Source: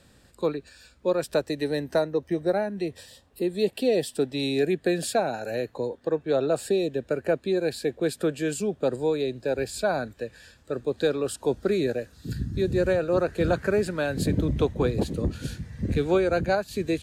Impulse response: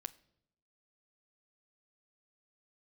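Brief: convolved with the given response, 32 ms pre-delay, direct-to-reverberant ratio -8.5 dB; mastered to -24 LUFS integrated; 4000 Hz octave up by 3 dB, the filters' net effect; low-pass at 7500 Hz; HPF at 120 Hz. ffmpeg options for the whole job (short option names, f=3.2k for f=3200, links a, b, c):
-filter_complex "[0:a]highpass=120,lowpass=7.5k,equalizer=f=4k:t=o:g=3.5,asplit=2[a][b];[1:a]atrim=start_sample=2205,adelay=32[c];[b][c]afir=irnorm=-1:irlink=0,volume=12dB[d];[a][d]amix=inputs=2:normalize=0,volume=-6dB"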